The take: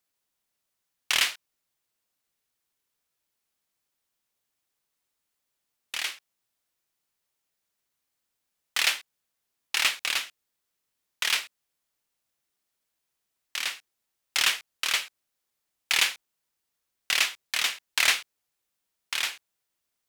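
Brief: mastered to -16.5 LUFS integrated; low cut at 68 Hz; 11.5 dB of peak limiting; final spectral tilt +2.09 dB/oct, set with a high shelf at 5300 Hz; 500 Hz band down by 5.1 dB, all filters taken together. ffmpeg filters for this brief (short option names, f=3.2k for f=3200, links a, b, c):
-af "highpass=68,equalizer=f=500:t=o:g=-7,highshelf=f=5.3k:g=3,volume=15.5dB,alimiter=limit=-2.5dB:level=0:latency=1"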